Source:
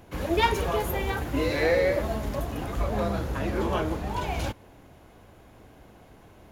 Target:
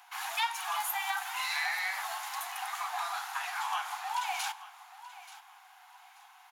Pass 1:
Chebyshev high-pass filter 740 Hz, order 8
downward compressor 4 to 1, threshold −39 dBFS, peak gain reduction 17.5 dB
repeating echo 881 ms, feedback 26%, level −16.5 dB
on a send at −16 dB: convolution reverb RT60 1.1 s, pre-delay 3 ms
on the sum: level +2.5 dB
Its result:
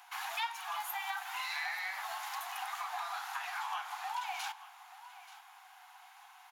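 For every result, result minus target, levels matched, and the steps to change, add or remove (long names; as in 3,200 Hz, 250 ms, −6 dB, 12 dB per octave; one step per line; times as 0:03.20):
downward compressor: peak gain reduction +5 dB; 8,000 Hz band −3.0 dB
change: downward compressor 4 to 1, threshold −32 dBFS, peak gain reduction 12 dB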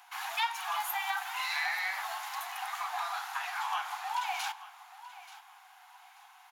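8,000 Hz band −3.5 dB
add after Chebyshev high-pass filter: dynamic equaliser 9,100 Hz, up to +6 dB, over −55 dBFS, Q 0.86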